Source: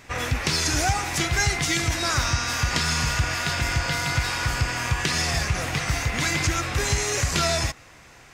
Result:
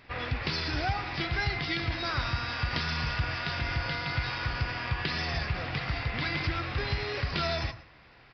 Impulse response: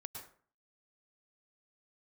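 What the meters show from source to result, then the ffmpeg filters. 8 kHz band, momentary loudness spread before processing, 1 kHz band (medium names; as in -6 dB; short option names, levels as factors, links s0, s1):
-28.5 dB, 3 LU, -6.5 dB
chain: -filter_complex "[0:a]asplit=2[s0][s1];[1:a]atrim=start_sample=2205,asetrate=48510,aresample=44100[s2];[s1][s2]afir=irnorm=-1:irlink=0,volume=0.501[s3];[s0][s3]amix=inputs=2:normalize=0,aresample=11025,aresample=44100,volume=0.376"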